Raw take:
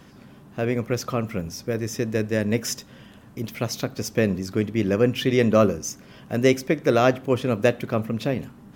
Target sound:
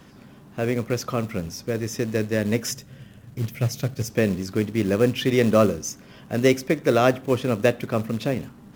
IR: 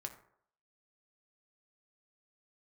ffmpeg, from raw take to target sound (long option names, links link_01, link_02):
-filter_complex "[0:a]asettb=1/sr,asplit=3[link_01][link_02][link_03];[link_01]atrim=end=2.714[link_04];[link_02]atrim=start=2.71:end=4.1,asetpts=PTS-STARTPTS,afade=type=in:duration=0.004:curve=qsin,afade=type=out:start_time=1.386:duration=0.004:curve=qsin,equalizer=frequency=125:width_type=o:width=1:gain=9,equalizer=frequency=250:width_type=o:width=1:gain=-5,equalizer=frequency=1000:width_type=o:width=1:gain=-8,equalizer=frequency=4000:width_type=o:width=1:gain=-6[link_05];[link_03]atrim=start=4.096[link_06];[link_04][link_05]acrossfade=duration=0.004:curve1=hsin:curve2=qsin[link_07];[link_07][link_06]acrossfade=duration=0.004:curve1=qsin:curve2=hsin,acrossover=split=600[link_08][link_09];[link_08]acrusher=bits=5:mode=log:mix=0:aa=0.000001[link_10];[link_10][link_09]amix=inputs=2:normalize=0"